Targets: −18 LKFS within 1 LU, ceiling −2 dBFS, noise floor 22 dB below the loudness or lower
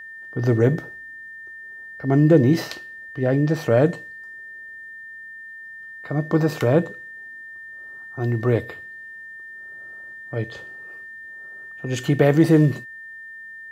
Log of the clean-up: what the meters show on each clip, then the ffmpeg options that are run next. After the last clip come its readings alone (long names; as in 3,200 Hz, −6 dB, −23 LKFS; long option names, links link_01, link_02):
interfering tone 1,800 Hz; level of the tone −36 dBFS; integrated loudness −20.5 LKFS; sample peak −3.0 dBFS; target loudness −18.0 LKFS
→ -af "bandreject=frequency=1800:width=30"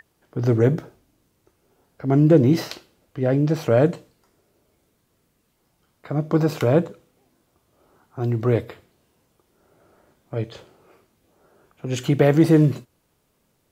interfering tone none found; integrated loudness −20.5 LKFS; sample peak −3.0 dBFS; target loudness −18.0 LKFS
→ -af "volume=2.5dB,alimiter=limit=-2dB:level=0:latency=1"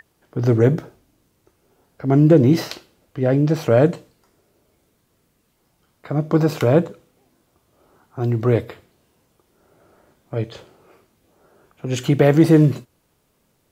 integrated loudness −18.0 LKFS; sample peak −2.0 dBFS; background noise floor −66 dBFS